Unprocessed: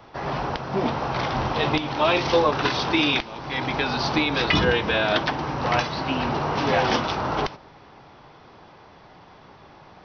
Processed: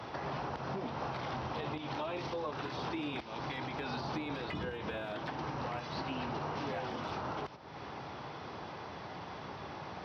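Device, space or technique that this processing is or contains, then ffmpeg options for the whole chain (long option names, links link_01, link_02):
podcast mastering chain: -af "highpass=frequency=62:width=0.5412,highpass=frequency=62:width=1.3066,deesser=0.95,acompressor=threshold=-42dB:ratio=3,alimiter=level_in=8.5dB:limit=-24dB:level=0:latency=1:release=277,volume=-8.5dB,volume=4.5dB" -ar 32000 -c:a libmp3lame -b:a 96k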